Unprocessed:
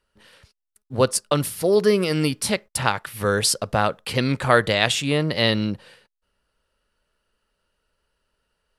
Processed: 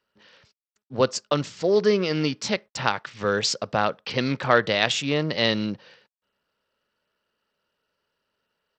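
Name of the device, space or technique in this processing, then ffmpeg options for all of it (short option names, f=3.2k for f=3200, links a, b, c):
Bluetooth headset: -af "highpass=140,aresample=16000,aresample=44100,volume=-2dB" -ar 32000 -c:a sbc -b:a 64k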